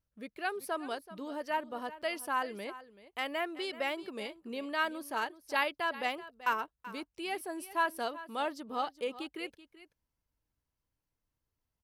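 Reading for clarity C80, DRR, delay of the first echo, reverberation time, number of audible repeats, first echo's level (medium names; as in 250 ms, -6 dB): no reverb, no reverb, 382 ms, no reverb, 1, -16.0 dB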